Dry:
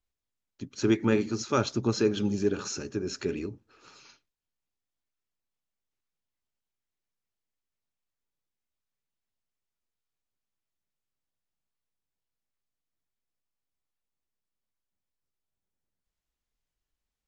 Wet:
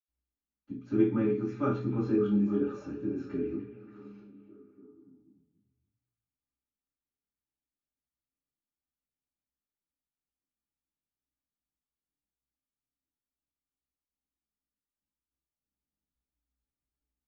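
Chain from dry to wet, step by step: three-band isolator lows -13 dB, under 230 Hz, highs -22 dB, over 2600 Hz; delay with a stepping band-pass 0.288 s, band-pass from 2500 Hz, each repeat -0.7 oct, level -9 dB; reverb RT60 0.45 s, pre-delay 77 ms; gain +1.5 dB

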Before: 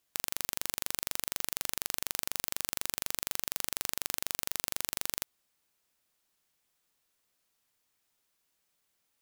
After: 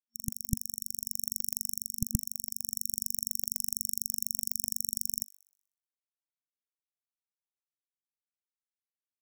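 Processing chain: per-bin expansion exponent 3; in parallel at -1.5 dB: decimation with a swept rate 32×, swing 60% 2.4 Hz; on the sum: FFT band-reject 230–5500 Hz; AGC; thin delay 62 ms, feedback 54%, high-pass 2200 Hz, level -21 dB; gain -1 dB

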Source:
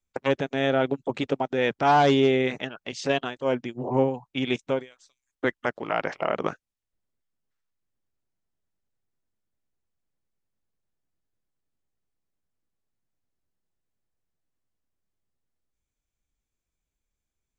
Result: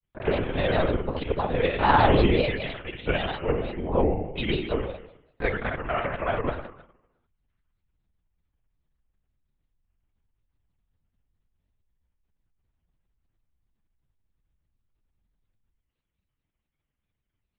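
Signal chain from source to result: flutter echo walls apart 10.9 m, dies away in 0.81 s; LPC vocoder at 8 kHz whisper; grains, grains 20/s, spray 22 ms, pitch spread up and down by 3 st

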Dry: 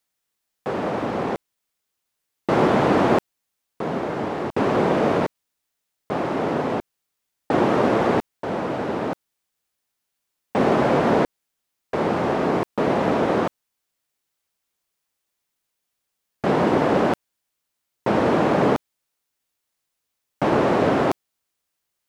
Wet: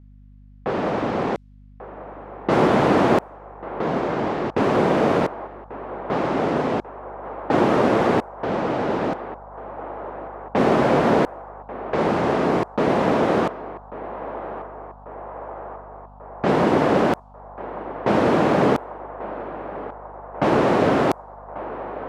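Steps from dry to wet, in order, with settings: hum 50 Hz, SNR 28 dB; in parallel at -2 dB: compressor, threshold -34 dBFS, peak gain reduction 19 dB; on the sum: narrowing echo 1.141 s, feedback 79%, band-pass 870 Hz, level -12 dB; low-pass opened by the level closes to 2000 Hz, open at -15 dBFS

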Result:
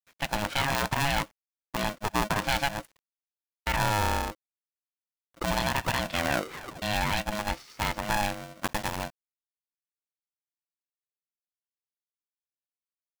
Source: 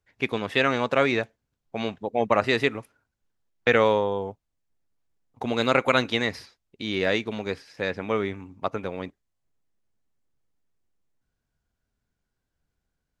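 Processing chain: 8.64–9.05 block floating point 3-bit; limiter -15 dBFS, peak gain reduction 10.5 dB; requantised 10-bit, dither none; 5.97 tape stop 0.85 s; polarity switched at an audio rate 420 Hz

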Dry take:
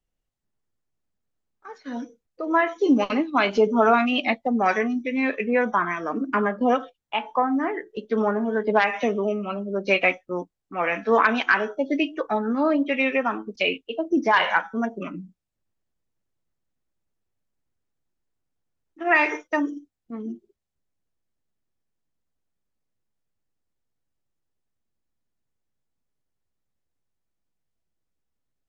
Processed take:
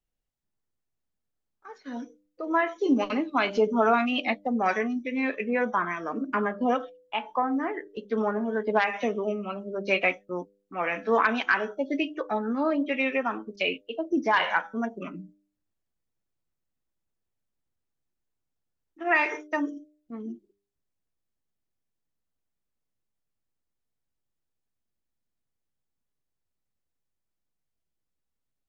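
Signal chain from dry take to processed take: de-hum 100.3 Hz, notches 6; gain -4 dB

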